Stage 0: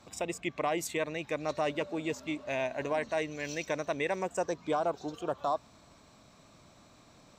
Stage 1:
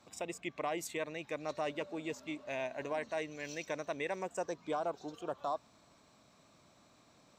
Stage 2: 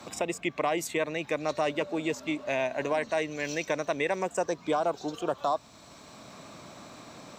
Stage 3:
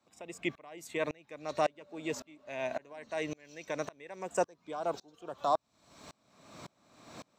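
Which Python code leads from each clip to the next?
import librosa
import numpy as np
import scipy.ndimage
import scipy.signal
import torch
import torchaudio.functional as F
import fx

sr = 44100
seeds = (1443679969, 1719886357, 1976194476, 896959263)

y1 = fx.low_shelf(x, sr, hz=76.0, db=-11.5)
y1 = y1 * librosa.db_to_amplitude(-5.5)
y2 = fx.band_squash(y1, sr, depth_pct=40)
y2 = y2 * librosa.db_to_amplitude(9.0)
y3 = fx.tremolo_decay(y2, sr, direction='swelling', hz=1.8, depth_db=32)
y3 = y3 * librosa.db_to_amplitude(2.0)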